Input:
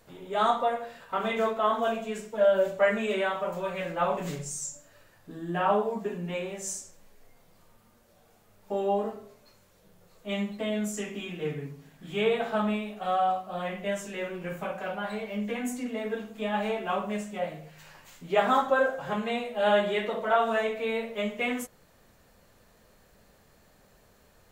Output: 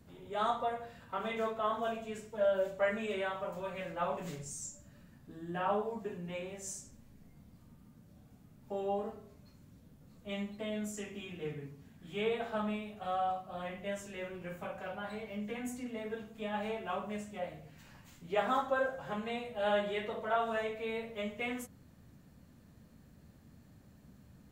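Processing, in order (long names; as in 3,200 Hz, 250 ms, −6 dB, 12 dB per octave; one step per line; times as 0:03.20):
noise in a band 54–250 Hz −51 dBFS
level −8 dB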